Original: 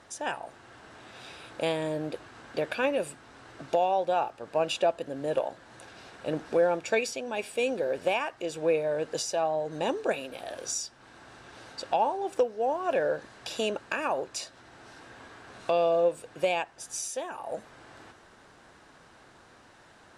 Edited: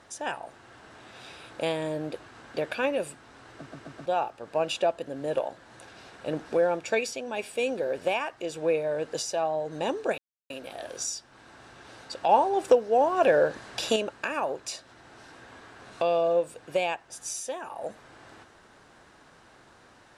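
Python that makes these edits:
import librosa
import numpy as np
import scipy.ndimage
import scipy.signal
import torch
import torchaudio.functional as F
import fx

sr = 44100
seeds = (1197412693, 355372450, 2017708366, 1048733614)

y = fx.edit(x, sr, fx.stutter_over(start_s=3.54, slice_s=0.13, count=4),
    fx.insert_silence(at_s=10.18, length_s=0.32),
    fx.clip_gain(start_s=11.97, length_s=1.67, db=6.0), tone=tone)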